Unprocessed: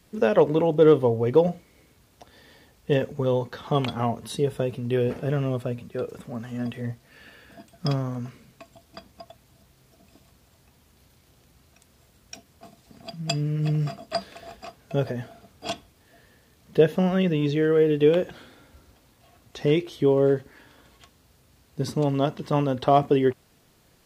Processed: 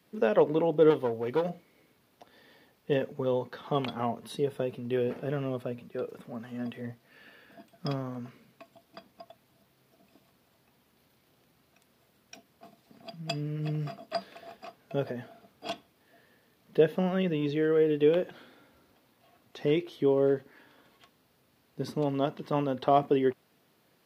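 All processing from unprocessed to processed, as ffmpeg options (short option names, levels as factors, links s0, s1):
-filter_complex "[0:a]asettb=1/sr,asplit=3[s0][s1][s2];[s0]atrim=end=0.904[s3];[s1]atrim=start=0.9:end=1.5,asetpts=PTS-STARTPTS,afade=t=in:d=0.004:c=qsin,afade=t=out:st=0.596:d=0.004:c=qsin,tiltshelf=f=1300:g=-3.5,aeval=exprs='clip(val(0),-1,0.0631)':c=same[s4];[s2]atrim=start=1.496[s5];[s3][s4]acrossfade=d=0.004:c1=hsin:c2=qsin[s6];[s6][s5]acrossfade=d=0.004:c1=qsin:c2=hsin,highpass=170,equalizer=f=7400:w=1.2:g=-9,volume=0.596"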